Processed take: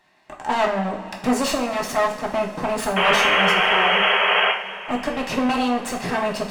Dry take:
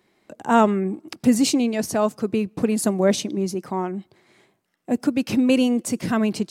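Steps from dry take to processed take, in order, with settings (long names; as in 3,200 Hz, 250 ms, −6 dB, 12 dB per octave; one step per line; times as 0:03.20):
lower of the sound and its delayed copy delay 1.1 ms
mid-hump overdrive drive 18 dB, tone 2,600 Hz, clips at −8 dBFS
sound drawn into the spectrogram noise, 0:02.96–0:04.52, 380–3,300 Hz −16 dBFS
coupled-rooms reverb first 0.45 s, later 4.9 s, from −19 dB, DRR 0.5 dB
level −4.5 dB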